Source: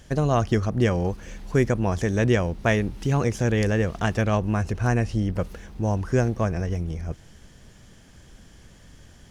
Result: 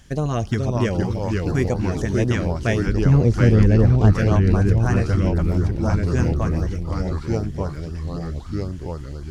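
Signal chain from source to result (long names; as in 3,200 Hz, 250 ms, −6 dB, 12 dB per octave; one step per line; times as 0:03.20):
0:02.87–0:04.14: spectral tilt −3 dB per octave
delay with pitch and tempo change per echo 401 ms, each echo −2 semitones, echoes 3
auto-filter notch saw up 3.9 Hz 380–2,900 Hz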